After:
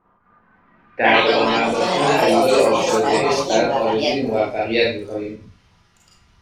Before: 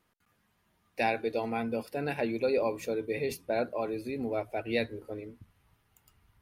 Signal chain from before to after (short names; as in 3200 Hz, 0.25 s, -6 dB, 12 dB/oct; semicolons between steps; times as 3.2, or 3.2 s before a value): Schroeder reverb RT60 0.34 s, combs from 32 ms, DRR -4.5 dB; low-pass sweep 1100 Hz -> 5600 Hz, 0.64–2.17; echoes that change speed 0.255 s, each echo +4 st, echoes 3; gain +7 dB